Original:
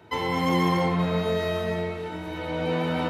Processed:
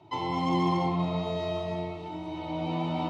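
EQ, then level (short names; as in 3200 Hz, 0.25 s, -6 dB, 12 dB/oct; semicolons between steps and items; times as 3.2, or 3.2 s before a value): air absorption 110 m; fixed phaser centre 320 Hz, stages 8; 0.0 dB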